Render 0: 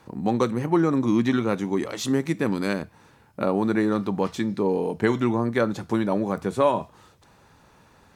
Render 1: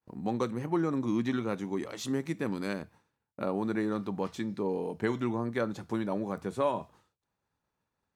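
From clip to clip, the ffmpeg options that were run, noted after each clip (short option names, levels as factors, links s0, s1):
-af "agate=range=0.0224:threshold=0.00794:ratio=3:detection=peak,volume=0.376"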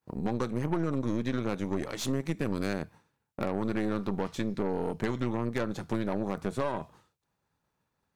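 -af "equalizer=f=150:t=o:w=0.42:g=4,acompressor=threshold=0.0282:ratio=6,aeval=exprs='0.0841*(cos(1*acos(clip(val(0)/0.0841,-1,1)))-cos(1*PI/2))+0.0106*(cos(6*acos(clip(val(0)/0.0841,-1,1)))-cos(6*PI/2))':c=same,volume=1.5"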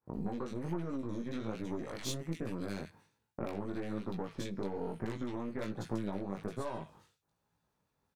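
-filter_complex "[0:a]acompressor=threshold=0.0251:ratio=6,flanger=delay=17:depth=4:speed=1.2,acrossover=split=1800[s0][s1];[s1]adelay=60[s2];[s0][s2]amix=inputs=2:normalize=0,volume=1.26"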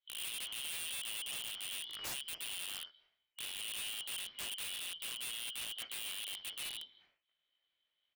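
-af "afftfilt=real='real(if(lt(b,272),68*(eq(floor(b/68),0)*2+eq(floor(b/68),1)*3+eq(floor(b/68),2)*0+eq(floor(b/68),3)*1)+mod(b,68),b),0)':imag='imag(if(lt(b,272),68*(eq(floor(b/68),0)*2+eq(floor(b/68),1)*3+eq(floor(b/68),2)*0+eq(floor(b/68),3)*1)+mod(b,68),b),0)':win_size=2048:overlap=0.75,lowpass=f=2300:t=q:w=4.3,aeval=exprs='(mod(39.8*val(0)+1,2)-1)/39.8':c=same,volume=0.668"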